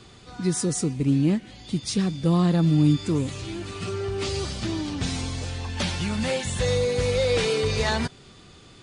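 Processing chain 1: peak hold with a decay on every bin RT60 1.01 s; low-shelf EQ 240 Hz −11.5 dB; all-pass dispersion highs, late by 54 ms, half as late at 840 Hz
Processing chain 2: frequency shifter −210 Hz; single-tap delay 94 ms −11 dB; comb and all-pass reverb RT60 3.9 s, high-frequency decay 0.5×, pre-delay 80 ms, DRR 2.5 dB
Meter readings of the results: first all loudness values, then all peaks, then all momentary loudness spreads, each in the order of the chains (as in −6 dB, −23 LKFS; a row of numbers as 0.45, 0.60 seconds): −26.5, −25.0 LKFS; −11.0, −8.0 dBFS; 10, 8 LU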